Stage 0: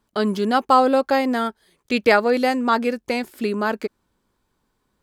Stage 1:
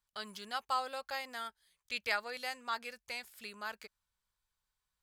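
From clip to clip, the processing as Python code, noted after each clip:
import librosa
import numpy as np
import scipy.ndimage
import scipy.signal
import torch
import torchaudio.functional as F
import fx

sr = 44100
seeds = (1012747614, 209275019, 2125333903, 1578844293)

y = fx.tone_stack(x, sr, knobs='10-0-10')
y = F.gain(torch.from_numpy(y), -9.0).numpy()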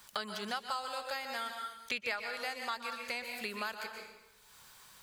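y = fx.rev_plate(x, sr, seeds[0], rt60_s=0.63, hf_ratio=0.9, predelay_ms=110, drr_db=5.5)
y = fx.band_squash(y, sr, depth_pct=100)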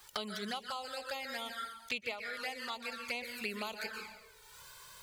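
y = fx.rider(x, sr, range_db=4, speed_s=0.5)
y = fx.env_flanger(y, sr, rest_ms=2.7, full_db=-33.5)
y = F.gain(torch.from_numpy(y), 2.5).numpy()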